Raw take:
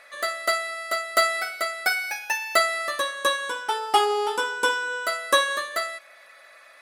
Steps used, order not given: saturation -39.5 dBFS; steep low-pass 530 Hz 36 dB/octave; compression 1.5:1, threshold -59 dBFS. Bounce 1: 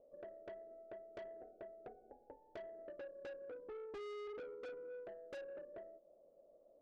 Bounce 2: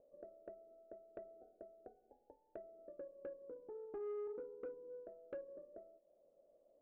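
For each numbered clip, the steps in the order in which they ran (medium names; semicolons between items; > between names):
steep low-pass > saturation > compression; compression > steep low-pass > saturation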